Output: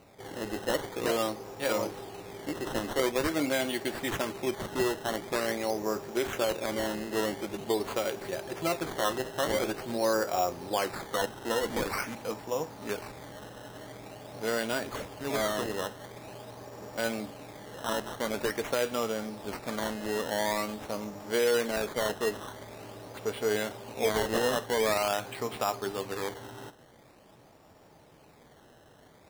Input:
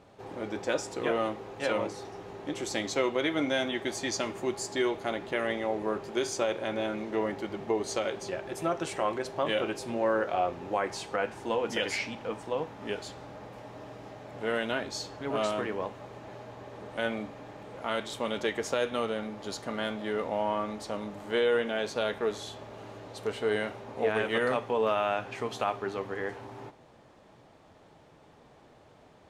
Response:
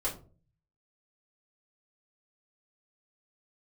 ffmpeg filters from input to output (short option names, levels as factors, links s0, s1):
-af "acrusher=samples=13:mix=1:aa=0.000001:lfo=1:lforange=13:lforate=0.46"